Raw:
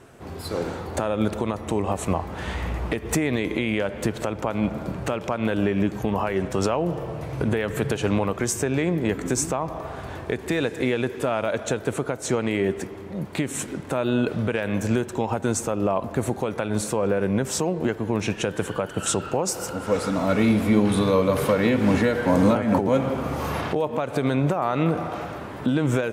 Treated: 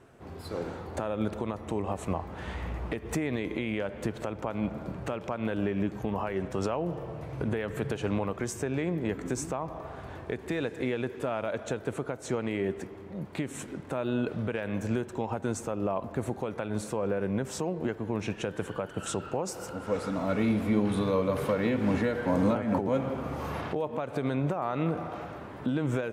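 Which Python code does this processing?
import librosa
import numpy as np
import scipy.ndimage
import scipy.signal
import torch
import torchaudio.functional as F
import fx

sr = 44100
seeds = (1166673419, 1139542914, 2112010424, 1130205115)

y = fx.high_shelf(x, sr, hz=3800.0, db=-6.5)
y = y * 10.0 ** (-7.0 / 20.0)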